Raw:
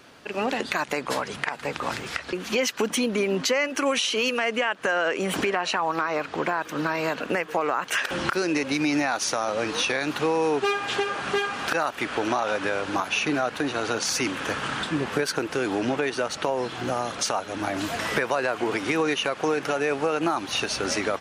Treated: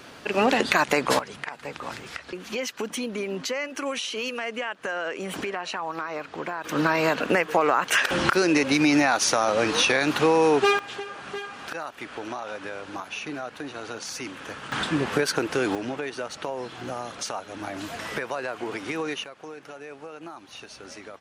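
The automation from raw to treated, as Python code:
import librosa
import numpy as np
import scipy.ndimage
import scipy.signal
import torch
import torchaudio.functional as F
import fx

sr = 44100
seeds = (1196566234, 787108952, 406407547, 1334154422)

y = fx.gain(x, sr, db=fx.steps((0.0, 5.5), (1.19, -6.0), (6.64, 4.0), (10.79, -9.0), (14.72, 1.5), (15.75, -6.0), (19.24, -16.0)))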